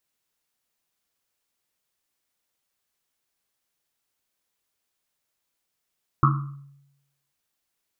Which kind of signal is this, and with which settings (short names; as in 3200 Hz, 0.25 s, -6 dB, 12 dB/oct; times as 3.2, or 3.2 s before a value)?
Risset drum, pitch 140 Hz, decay 0.90 s, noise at 1200 Hz, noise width 290 Hz, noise 35%